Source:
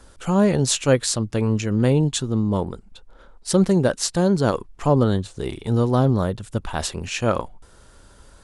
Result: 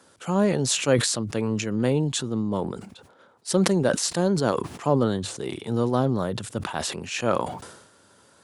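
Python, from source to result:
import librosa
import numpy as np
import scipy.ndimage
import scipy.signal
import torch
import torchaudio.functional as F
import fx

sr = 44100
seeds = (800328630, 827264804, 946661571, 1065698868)

y = scipy.signal.sosfilt(scipy.signal.bessel(8, 160.0, 'highpass', norm='mag', fs=sr, output='sos'), x)
y = fx.sustainer(y, sr, db_per_s=61.0)
y = y * librosa.db_to_amplitude(-3.0)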